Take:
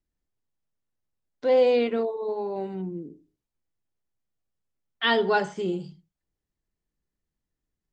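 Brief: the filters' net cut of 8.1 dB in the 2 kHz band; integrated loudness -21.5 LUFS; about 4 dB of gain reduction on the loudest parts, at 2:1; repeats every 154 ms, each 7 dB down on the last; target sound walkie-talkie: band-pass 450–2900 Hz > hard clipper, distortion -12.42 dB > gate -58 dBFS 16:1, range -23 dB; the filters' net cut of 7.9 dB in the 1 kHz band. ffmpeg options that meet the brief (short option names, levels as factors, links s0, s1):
-af "equalizer=f=1000:t=o:g=-9,equalizer=f=2000:t=o:g=-6,acompressor=threshold=0.0562:ratio=2,highpass=450,lowpass=2900,aecho=1:1:154|308|462|616|770:0.447|0.201|0.0905|0.0407|0.0183,asoftclip=type=hard:threshold=0.0447,agate=range=0.0708:threshold=0.00126:ratio=16,volume=3.98"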